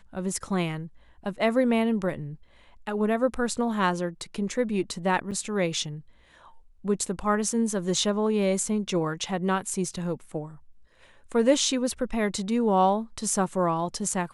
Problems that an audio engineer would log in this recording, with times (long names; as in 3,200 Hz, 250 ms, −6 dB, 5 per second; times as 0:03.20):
0:05.31–0:05.32: drop-out 6.8 ms